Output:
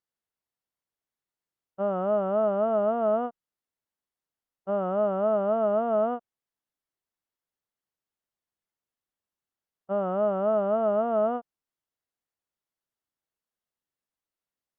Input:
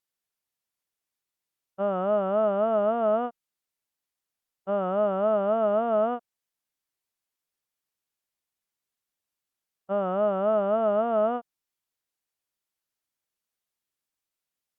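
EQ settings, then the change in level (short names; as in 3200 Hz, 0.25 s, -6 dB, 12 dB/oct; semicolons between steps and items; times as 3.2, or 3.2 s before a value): high shelf 2400 Hz -10.5 dB; notch 2400 Hz, Q 15; 0.0 dB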